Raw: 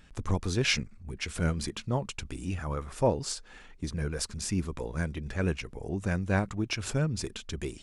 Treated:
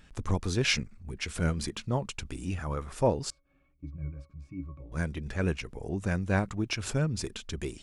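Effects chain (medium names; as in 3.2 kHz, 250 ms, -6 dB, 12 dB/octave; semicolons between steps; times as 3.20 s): 3.30–4.92 s: pitch-class resonator C#, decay 0.16 s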